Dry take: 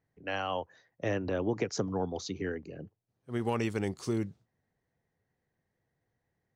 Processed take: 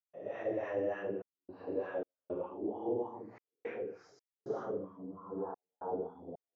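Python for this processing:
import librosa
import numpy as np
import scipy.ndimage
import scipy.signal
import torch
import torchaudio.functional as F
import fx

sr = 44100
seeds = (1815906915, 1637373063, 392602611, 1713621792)

y = fx.paulstretch(x, sr, seeds[0], factor=5.6, window_s=0.1, from_s=0.98)
y = fx.wah_lfo(y, sr, hz=3.3, low_hz=390.0, high_hz=1200.0, q=2.1)
y = fx.step_gate(y, sr, bpm=111, pattern='.xxxxxxxx..xxxx.', floor_db=-60.0, edge_ms=4.5)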